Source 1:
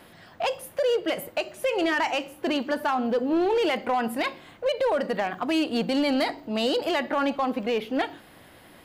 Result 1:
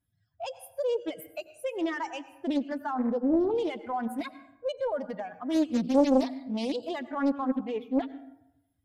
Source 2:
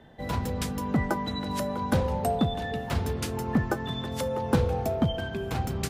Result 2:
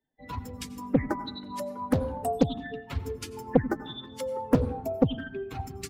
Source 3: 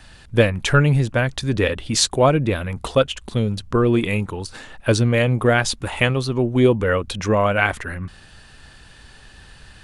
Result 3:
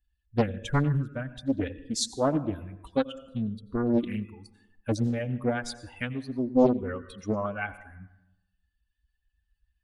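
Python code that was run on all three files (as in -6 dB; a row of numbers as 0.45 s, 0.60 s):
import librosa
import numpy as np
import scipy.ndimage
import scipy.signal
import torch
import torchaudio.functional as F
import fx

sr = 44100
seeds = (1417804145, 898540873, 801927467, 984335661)

y = fx.bin_expand(x, sr, power=2.0)
y = fx.peak_eq(y, sr, hz=270.0, db=13.0, octaves=0.44)
y = fx.rev_plate(y, sr, seeds[0], rt60_s=0.9, hf_ratio=0.5, predelay_ms=75, drr_db=14.5)
y = fx.dynamic_eq(y, sr, hz=2300.0, q=1.3, threshold_db=-41.0, ratio=4.0, max_db=-6)
y = fx.doppler_dist(y, sr, depth_ms=0.85)
y = y * 10.0 ** (-30 / 20.0) / np.sqrt(np.mean(np.square(y)))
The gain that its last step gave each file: -3.5 dB, -0.5 dB, -8.0 dB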